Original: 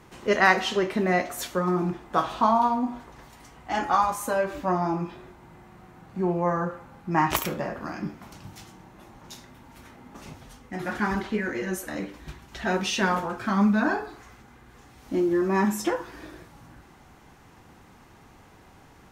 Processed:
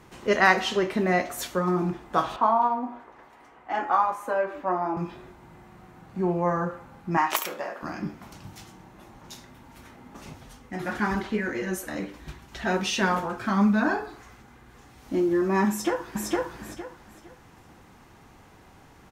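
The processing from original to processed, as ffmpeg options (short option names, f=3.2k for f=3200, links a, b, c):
-filter_complex "[0:a]asettb=1/sr,asplit=3[a][b][c];[a]atrim=end=2.364[d];[b]atrim=start=2.36:end=4.97,asetpts=PTS-STARTPTS,afade=t=in:d=0.004:c=qsin,afade=t=out:st=2.606:d=0.004:c=qsin,acrossover=split=280 2500:gain=0.158 1 0.178[e][f][g];[e][f][g]amix=inputs=3:normalize=0[h];[c]atrim=start=4.966[i];[d][h]acrossfade=d=0.004:c1=hsin:c2=qsin[j];[j][i]acrossfade=d=0.004:c1=qsin:c2=hsin,asettb=1/sr,asplit=3[k][l][m];[k]atrim=end=7.174[n];[l]atrim=start=7.17:end=7.83,asetpts=PTS-STARTPTS,afade=t=in:d=0.004:c=qsin,afade=t=out:st=0.656:d=0.004:c=qsin,highpass=490[o];[m]atrim=start=7.826[p];[n][o]acrossfade=d=0.004:c1=hsin:c2=qsin[q];[q][p]acrossfade=d=0.004:c1=qsin:c2=hsin,asplit=2[r][s];[s]afade=t=in:st=15.69:d=0.01,afade=t=out:st=16.28:d=0.01,aecho=0:1:460|920|1380|1840:0.944061|0.236015|0.0590038|0.014751[t];[r][t]amix=inputs=2:normalize=0"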